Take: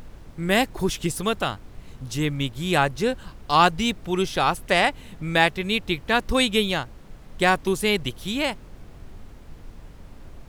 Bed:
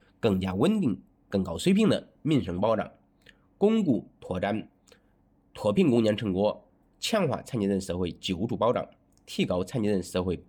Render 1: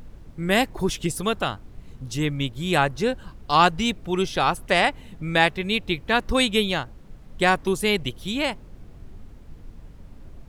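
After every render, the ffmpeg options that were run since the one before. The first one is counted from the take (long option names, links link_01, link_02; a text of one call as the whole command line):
ffmpeg -i in.wav -af "afftdn=noise_reduction=6:noise_floor=-45" out.wav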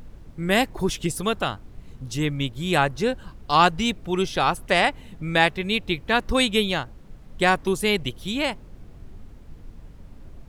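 ffmpeg -i in.wav -af anull out.wav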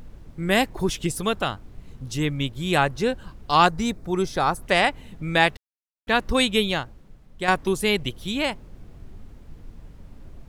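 ffmpeg -i in.wav -filter_complex "[0:a]asettb=1/sr,asplit=3[link_01][link_02][link_03];[link_01]atrim=end=3.664[link_04];[link_02]atrim=start=3.66:end=4.62,asetpts=PTS-STARTPTS,afade=type=in:duration=0.004:curve=qsin,afade=type=out:start_time=0.956:duration=0.004:curve=qsin,equalizer=frequency=2900:width_type=o:width=0.58:gain=-12.5[link_05];[link_03]atrim=start=4.616[link_06];[link_04][link_05]acrossfade=duration=0.004:curve1=hsin:curve2=qsin[link_07];[link_07][link_06]acrossfade=duration=0.004:curve1=qsin:curve2=hsin,asplit=4[link_08][link_09][link_10][link_11];[link_08]atrim=end=5.57,asetpts=PTS-STARTPTS,afade=type=out:start_time=5.566:duration=0.004:curve=hsin[link_12];[link_09]atrim=start=5.57:end=6.07,asetpts=PTS-STARTPTS,volume=0[link_13];[link_10]atrim=start=6.07:end=7.48,asetpts=PTS-STARTPTS,afade=type=in:duration=0.004:curve=hsin,afade=type=out:start_time=0.69:duration=0.72:curve=qua:silence=0.421697[link_14];[link_11]atrim=start=7.48,asetpts=PTS-STARTPTS,afade=type=in:duration=0.004:curve=hsin:silence=0.421697[link_15];[link_12][link_13][link_14][link_15]concat=n=4:v=0:a=1" out.wav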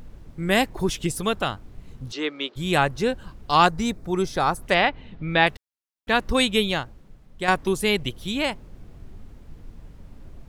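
ffmpeg -i in.wav -filter_complex "[0:a]asplit=3[link_01][link_02][link_03];[link_01]afade=type=out:start_time=2.11:duration=0.02[link_04];[link_02]highpass=frequency=330:width=0.5412,highpass=frequency=330:width=1.3066,equalizer=frequency=390:width_type=q:width=4:gain=5,equalizer=frequency=1300:width_type=q:width=4:gain=7,equalizer=frequency=4300:width_type=q:width=4:gain=6,lowpass=frequency=5300:width=0.5412,lowpass=frequency=5300:width=1.3066,afade=type=in:start_time=2.11:duration=0.02,afade=type=out:start_time=2.55:duration=0.02[link_05];[link_03]afade=type=in:start_time=2.55:duration=0.02[link_06];[link_04][link_05][link_06]amix=inputs=3:normalize=0,asettb=1/sr,asplit=3[link_07][link_08][link_09];[link_07]atrim=end=4.744[link_10];[link_08]atrim=start=4.74:end=5.47,asetpts=PTS-STARTPTS,afade=type=in:duration=0.004:curve=qsin,afade=type=out:start_time=0.726:duration=0.004:curve=qsin,lowpass=frequency=4300:width=0.5412,lowpass=frequency=4300:width=1.3066[link_11];[link_09]atrim=start=5.466[link_12];[link_10][link_11]acrossfade=duration=0.004:curve1=hsin:curve2=qsin[link_13];[link_13][link_12]acrossfade=duration=0.004:curve1=qsin:curve2=hsin" out.wav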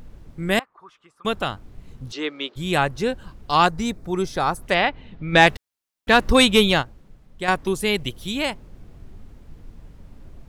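ffmpeg -i in.wav -filter_complex "[0:a]asettb=1/sr,asplit=3[link_01][link_02][link_03];[link_01]atrim=end=0.594[link_04];[link_02]atrim=start=0.59:end=1.25,asetpts=PTS-STARTPTS,afade=type=in:duration=0.004:curve=qsin,afade=type=out:start_time=0.656:duration=0.004:curve=qsin,bandpass=frequency=1200:width_type=q:width=7.8[link_05];[link_03]atrim=start=1.246[link_06];[link_04][link_05]acrossfade=duration=0.004:curve1=hsin:curve2=qsin[link_07];[link_07][link_06]acrossfade=duration=0.004:curve1=qsin:curve2=hsin,asplit=3[link_08][link_09][link_10];[link_08]afade=type=out:start_time=5.32:duration=0.02[link_11];[link_09]acontrast=73,afade=type=in:start_time=5.32:duration=0.02,afade=type=out:start_time=6.81:duration=0.02[link_12];[link_10]afade=type=in:start_time=6.81:duration=0.02[link_13];[link_11][link_12][link_13]amix=inputs=3:normalize=0,asettb=1/sr,asplit=3[link_14][link_15][link_16];[link_14]atrim=end=7.944[link_17];[link_15]atrim=start=7.94:end=8.51,asetpts=PTS-STARTPTS,afade=type=in:duration=0.004:curve=qsin,afade=type=out:start_time=0.566:duration=0.004:curve=qsin,highshelf=frequency=5900:gain=4.5[link_18];[link_16]atrim=start=8.506[link_19];[link_17][link_18]acrossfade=duration=0.004:curve1=hsin:curve2=qsin[link_20];[link_20][link_19]acrossfade=duration=0.004:curve1=qsin:curve2=hsin" out.wav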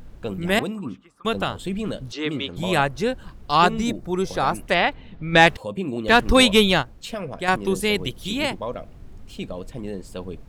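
ffmpeg -i in.wav -i bed.wav -filter_complex "[1:a]volume=-5.5dB[link_01];[0:a][link_01]amix=inputs=2:normalize=0" out.wav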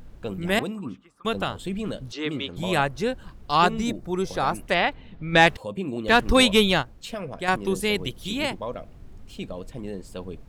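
ffmpeg -i in.wav -af "volume=-2.5dB" out.wav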